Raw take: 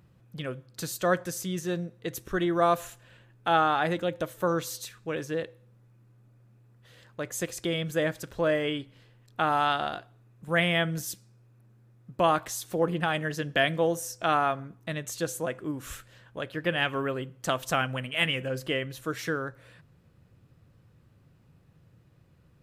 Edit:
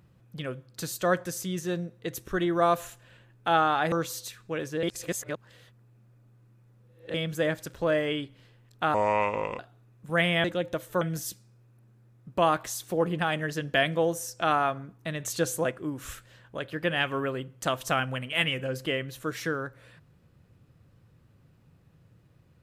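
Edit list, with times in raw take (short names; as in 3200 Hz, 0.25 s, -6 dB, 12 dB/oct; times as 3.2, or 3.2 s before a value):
3.92–4.49 move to 10.83
5.4–7.71 reverse
9.51–9.98 speed 72%
15.02–15.53 gain +3.5 dB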